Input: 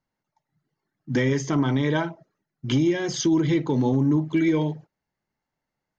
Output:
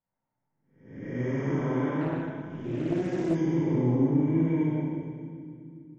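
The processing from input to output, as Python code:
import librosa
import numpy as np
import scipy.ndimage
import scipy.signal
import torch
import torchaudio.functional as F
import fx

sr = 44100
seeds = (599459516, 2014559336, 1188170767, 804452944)

p1 = fx.spec_blur(x, sr, span_ms=416.0)
p2 = np.convolve(p1, np.full(11, 1.0 / 11))[:len(p1)]
p3 = p2 + fx.echo_split(p2, sr, split_hz=310.0, low_ms=413, high_ms=204, feedback_pct=52, wet_db=-10.5, dry=0)
p4 = fx.rev_schroeder(p3, sr, rt60_s=1.1, comb_ms=33, drr_db=-7.0)
p5 = fx.doppler_dist(p4, sr, depth_ms=0.42, at=(2.01, 3.35))
y = F.gain(torch.from_numpy(p5), -8.0).numpy()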